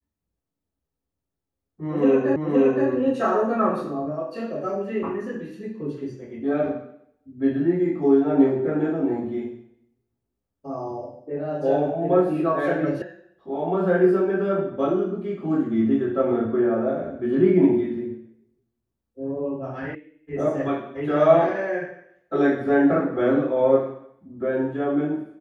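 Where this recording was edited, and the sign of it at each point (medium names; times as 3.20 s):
2.36 s: repeat of the last 0.52 s
13.02 s: sound stops dead
19.95 s: sound stops dead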